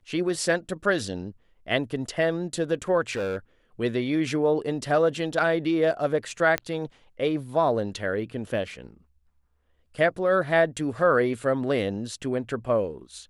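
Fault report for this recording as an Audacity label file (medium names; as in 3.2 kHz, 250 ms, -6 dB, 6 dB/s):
3.110000	3.370000	clipped -25 dBFS
6.580000	6.580000	pop -12 dBFS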